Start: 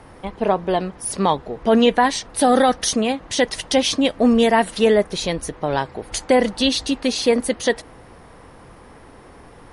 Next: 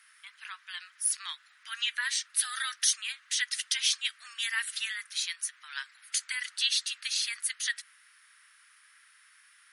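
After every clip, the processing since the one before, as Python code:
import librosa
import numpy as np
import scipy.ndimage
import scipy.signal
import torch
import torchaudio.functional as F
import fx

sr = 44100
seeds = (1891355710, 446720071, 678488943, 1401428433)

y = scipy.signal.sosfilt(scipy.signal.butter(8, 1400.0, 'highpass', fs=sr, output='sos'), x)
y = fx.high_shelf(y, sr, hz=8900.0, db=9.5)
y = y * librosa.db_to_amplitude(-6.5)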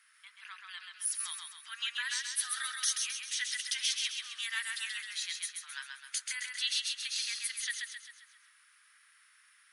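y = fx.echo_feedback(x, sr, ms=132, feedback_pct=49, wet_db=-4.0)
y = y * librosa.db_to_amplitude(-5.5)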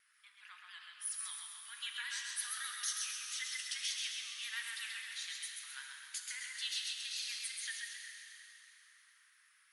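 y = fx.vibrato(x, sr, rate_hz=8.8, depth_cents=74.0)
y = fx.rev_plate(y, sr, seeds[0], rt60_s=4.0, hf_ratio=0.8, predelay_ms=0, drr_db=2.0)
y = y * librosa.db_to_amplitude(-7.5)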